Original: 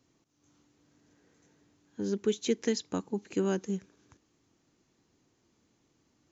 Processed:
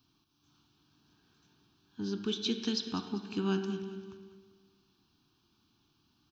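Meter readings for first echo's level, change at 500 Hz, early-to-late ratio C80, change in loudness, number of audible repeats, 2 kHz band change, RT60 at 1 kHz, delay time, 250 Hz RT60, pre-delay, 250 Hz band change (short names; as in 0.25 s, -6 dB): -14.5 dB, -6.5 dB, 7.5 dB, -2.5 dB, 3, -1.5 dB, 1.6 s, 0.197 s, 1.6 s, 13 ms, -1.5 dB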